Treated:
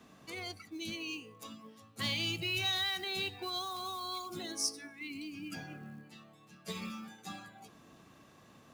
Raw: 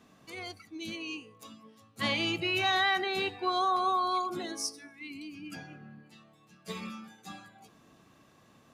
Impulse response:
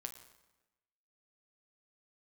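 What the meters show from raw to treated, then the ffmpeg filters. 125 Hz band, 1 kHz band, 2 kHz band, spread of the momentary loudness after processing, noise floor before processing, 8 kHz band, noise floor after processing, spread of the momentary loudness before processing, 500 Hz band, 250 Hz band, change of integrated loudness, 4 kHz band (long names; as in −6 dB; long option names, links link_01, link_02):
0.0 dB, −12.5 dB, −6.5 dB, 19 LU, −62 dBFS, +1.5 dB, −60 dBFS, 21 LU, −9.0 dB, −4.5 dB, −6.0 dB, −1.0 dB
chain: -filter_complex "[0:a]acrusher=bits=7:mode=log:mix=0:aa=0.000001,acrossover=split=170|3000[link_01][link_02][link_03];[link_02]acompressor=threshold=-43dB:ratio=6[link_04];[link_01][link_04][link_03]amix=inputs=3:normalize=0,volume=1.5dB"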